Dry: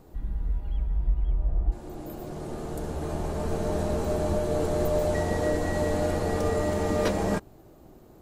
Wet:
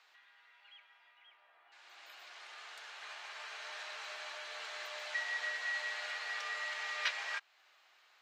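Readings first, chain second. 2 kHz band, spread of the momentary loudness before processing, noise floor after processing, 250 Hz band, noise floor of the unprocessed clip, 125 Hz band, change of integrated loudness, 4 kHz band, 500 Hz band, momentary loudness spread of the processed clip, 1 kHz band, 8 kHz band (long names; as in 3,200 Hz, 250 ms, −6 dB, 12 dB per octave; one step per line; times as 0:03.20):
+2.0 dB, 10 LU, −68 dBFS, below −40 dB, −52 dBFS, below −40 dB, −11.0 dB, +1.5 dB, −27.0 dB, 18 LU, −13.0 dB, −10.5 dB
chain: in parallel at −1.5 dB: downward compressor, threshold −39 dBFS, peak gain reduction 19.5 dB
on the sum: four-pole ladder high-pass 1,600 Hz, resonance 20%
high-frequency loss of the air 210 metres
level +10 dB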